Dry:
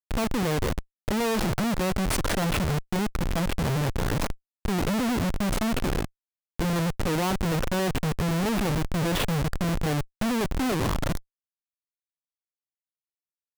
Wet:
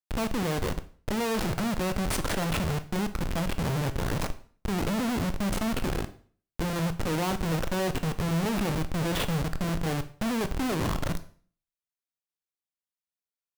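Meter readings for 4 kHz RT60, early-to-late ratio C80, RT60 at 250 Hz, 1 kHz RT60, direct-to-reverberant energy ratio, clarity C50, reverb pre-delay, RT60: 0.40 s, 19.0 dB, 0.50 s, 0.45 s, 10.0 dB, 15.5 dB, 16 ms, 0.45 s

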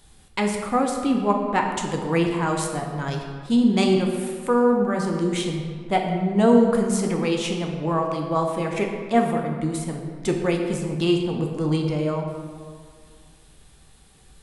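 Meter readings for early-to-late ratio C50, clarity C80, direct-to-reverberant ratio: 4.0 dB, 5.5 dB, 1.5 dB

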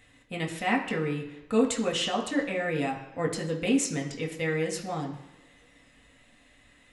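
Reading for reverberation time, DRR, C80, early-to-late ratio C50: non-exponential decay, −0.5 dB, 11.0 dB, 9.0 dB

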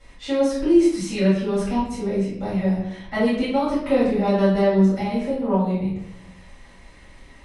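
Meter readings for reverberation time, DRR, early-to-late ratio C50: 0.80 s, −13.0 dB, 1.5 dB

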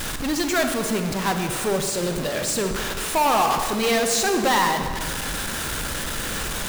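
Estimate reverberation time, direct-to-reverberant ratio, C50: 1.9 s, 5.5 dB, 6.0 dB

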